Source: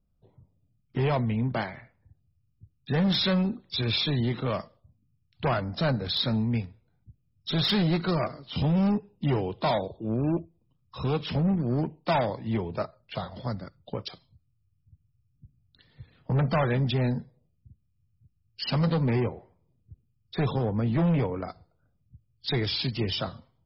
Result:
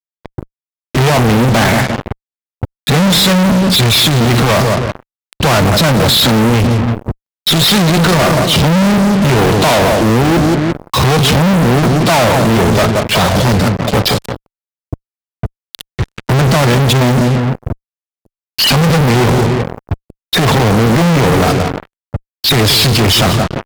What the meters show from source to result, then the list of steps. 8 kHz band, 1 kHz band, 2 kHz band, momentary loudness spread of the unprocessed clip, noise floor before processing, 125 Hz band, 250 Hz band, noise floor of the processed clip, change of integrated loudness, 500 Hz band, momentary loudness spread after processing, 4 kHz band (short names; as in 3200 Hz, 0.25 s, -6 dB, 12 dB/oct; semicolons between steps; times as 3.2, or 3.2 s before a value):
n/a, +19.5 dB, +21.5 dB, 12 LU, -71 dBFS, +16.5 dB, +16.5 dB, under -85 dBFS, +17.0 dB, +17.5 dB, 17 LU, +19.0 dB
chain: darkening echo 0.175 s, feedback 37%, low-pass 1000 Hz, level -12.5 dB; fuzz box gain 52 dB, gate -51 dBFS; added harmonics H 7 -18 dB, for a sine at -9.5 dBFS; gain +3 dB